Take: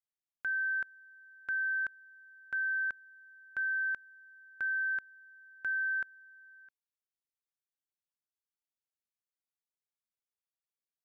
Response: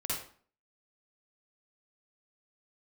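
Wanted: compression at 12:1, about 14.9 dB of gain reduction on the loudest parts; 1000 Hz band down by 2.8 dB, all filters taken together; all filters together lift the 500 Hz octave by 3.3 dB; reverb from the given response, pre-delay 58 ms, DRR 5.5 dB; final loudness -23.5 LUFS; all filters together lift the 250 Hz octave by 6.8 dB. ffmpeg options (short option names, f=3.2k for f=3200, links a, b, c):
-filter_complex "[0:a]equalizer=f=250:t=o:g=8,equalizer=f=500:t=o:g=3.5,equalizer=f=1k:t=o:g=-5.5,acompressor=threshold=-48dB:ratio=12,asplit=2[a][b];[1:a]atrim=start_sample=2205,adelay=58[c];[b][c]afir=irnorm=-1:irlink=0,volume=-9.5dB[d];[a][d]amix=inputs=2:normalize=0,volume=28dB"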